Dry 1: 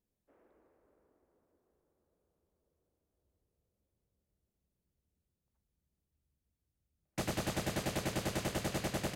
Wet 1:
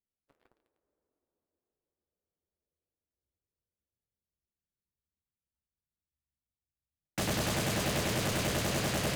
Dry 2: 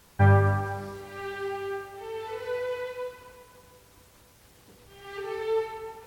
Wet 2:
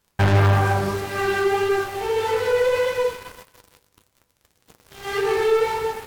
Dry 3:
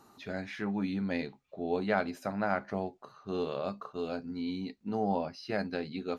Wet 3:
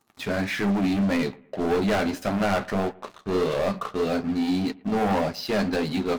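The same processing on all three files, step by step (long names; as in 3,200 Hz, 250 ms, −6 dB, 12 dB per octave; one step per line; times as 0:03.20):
leveller curve on the samples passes 5
flanger 1.7 Hz, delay 6.3 ms, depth 8.7 ms, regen −54%
on a send: bucket-brigade delay 111 ms, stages 2,048, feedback 38%, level −23.5 dB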